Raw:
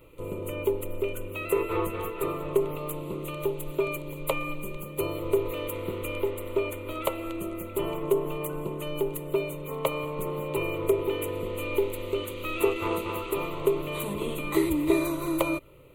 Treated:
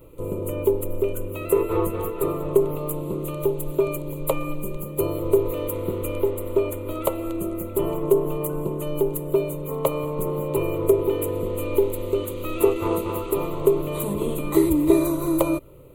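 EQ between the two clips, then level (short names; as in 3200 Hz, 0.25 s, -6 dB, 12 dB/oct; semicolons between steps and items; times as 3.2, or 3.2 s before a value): bell 2400 Hz -11.5 dB 2 oct; +7.0 dB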